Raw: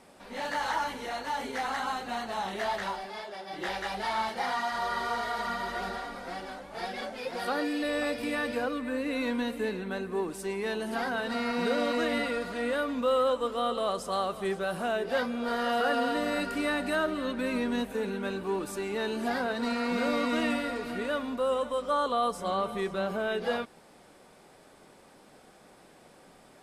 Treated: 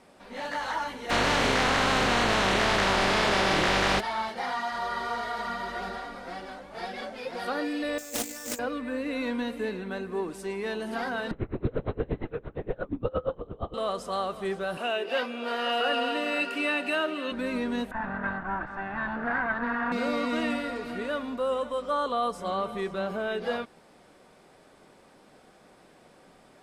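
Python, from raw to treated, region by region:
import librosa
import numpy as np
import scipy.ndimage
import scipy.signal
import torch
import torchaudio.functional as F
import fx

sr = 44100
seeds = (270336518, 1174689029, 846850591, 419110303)

y = fx.spec_flatten(x, sr, power=0.27, at=(1.09, 3.99), fade=0.02)
y = fx.spacing_loss(y, sr, db_at_10k=21, at=(1.09, 3.99), fade=0.02)
y = fx.env_flatten(y, sr, amount_pct=100, at=(1.09, 3.99), fade=0.02)
y = fx.chain(y, sr, fx.over_compress(threshold_db=-37.0, ratio=-0.5),
    fx.resample_bad(factor=6, down='none', up='zero_stuff'),
    fx.doppler_dist(depth_ms=0.43), at=(7.98, 8.59))
y = fx.chain(y, sr, fx.tilt_shelf(db=9.5, hz=650.0),
    fx.lpc_vocoder(seeds[0], excitation='whisper', order=10),
    fx.tremolo_db(hz=8.6, depth_db=28), at=(11.31, 13.74))
y = fx.chain(y, sr, fx.highpass(hz=260.0, slope=24),
    fx.peak_eq(hz=2700.0, db=14.0, octaves=0.28), at=(14.77, 17.32))
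y = fx.chain(y, sr, fx.lower_of_two(delay_ms=1.1),
    fx.lowpass_res(hz=1500.0, q=4.8), at=(17.91, 19.92))
y = fx.high_shelf(y, sr, hz=8500.0, db=-8.0)
y = fx.notch(y, sr, hz=840.0, q=27.0)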